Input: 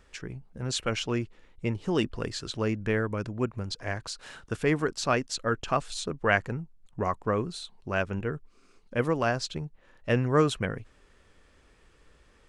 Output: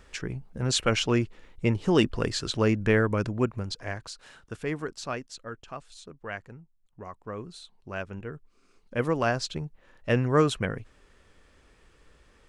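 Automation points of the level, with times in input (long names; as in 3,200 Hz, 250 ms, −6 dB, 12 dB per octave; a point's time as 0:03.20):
0:03.26 +5 dB
0:04.32 −6 dB
0:04.96 −6 dB
0:05.65 −13 dB
0:07.11 −13 dB
0:07.57 −6.5 dB
0:08.29 −6.5 dB
0:09.18 +1 dB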